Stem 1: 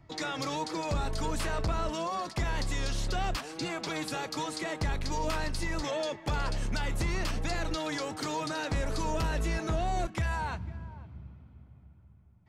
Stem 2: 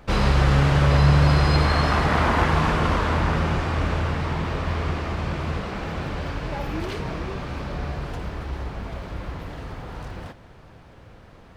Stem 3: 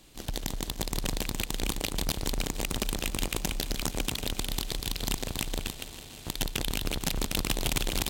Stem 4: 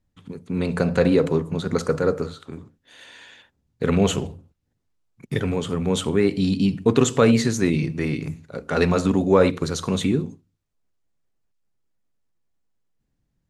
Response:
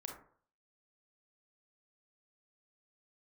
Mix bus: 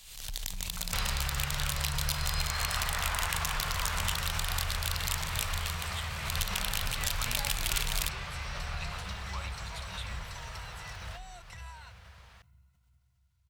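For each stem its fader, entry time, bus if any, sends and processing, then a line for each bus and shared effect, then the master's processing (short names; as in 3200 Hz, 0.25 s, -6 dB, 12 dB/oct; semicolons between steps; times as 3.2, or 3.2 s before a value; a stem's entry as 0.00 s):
-9.0 dB, 1.35 s, no send, ripple EQ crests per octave 2, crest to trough 11 dB; bit-crush 12-bit
+3.0 dB, 0.85 s, no send, HPF 60 Hz 12 dB/oct; compressor 4:1, threshold -26 dBFS, peak gain reduction 11.5 dB
-2.0 dB, 0.00 s, send -6.5 dB, dry
-9.0 dB, 0.00 s, no send, fixed phaser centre 1700 Hz, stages 6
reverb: on, RT60 0.50 s, pre-delay 27 ms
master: passive tone stack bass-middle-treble 10-0-10; backwards sustainer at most 67 dB/s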